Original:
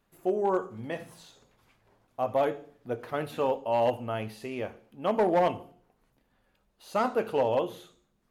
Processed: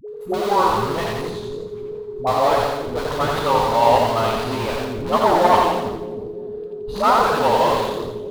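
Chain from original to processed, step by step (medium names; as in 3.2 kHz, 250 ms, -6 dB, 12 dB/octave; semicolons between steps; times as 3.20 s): peaking EQ 1.3 kHz +4 dB 0.38 oct; in parallel at -3.5 dB: Schmitt trigger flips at -40.5 dBFS; on the sum: fifteen-band graphic EQ 400 Hz -3 dB, 1 kHz +10 dB, 4 kHz +9 dB; whistle 420 Hz -32 dBFS; phase dispersion highs, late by 85 ms, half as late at 450 Hz; on a send: two-band feedback delay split 420 Hz, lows 316 ms, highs 86 ms, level -3 dB; on the sum: modulated delay 83 ms, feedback 34%, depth 167 cents, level -7.5 dB; trim +2.5 dB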